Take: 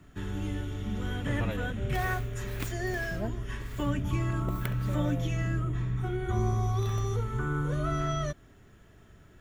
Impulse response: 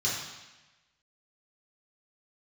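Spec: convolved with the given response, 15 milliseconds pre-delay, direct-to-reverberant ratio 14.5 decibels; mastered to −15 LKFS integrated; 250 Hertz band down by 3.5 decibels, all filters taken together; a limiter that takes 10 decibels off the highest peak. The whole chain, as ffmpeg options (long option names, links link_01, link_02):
-filter_complex "[0:a]equalizer=frequency=250:width_type=o:gain=-5.5,alimiter=limit=-23.5dB:level=0:latency=1,asplit=2[link_01][link_02];[1:a]atrim=start_sample=2205,adelay=15[link_03];[link_02][link_03]afir=irnorm=-1:irlink=0,volume=-23dB[link_04];[link_01][link_04]amix=inputs=2:normalize=0,volume=18.5dB"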